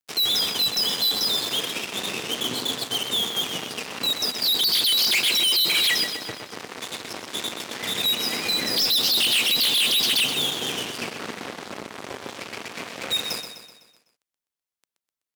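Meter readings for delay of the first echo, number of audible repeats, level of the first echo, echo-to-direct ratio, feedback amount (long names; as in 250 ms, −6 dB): 126 ms, 5, −9.0 dB, −7.5 dB, 51%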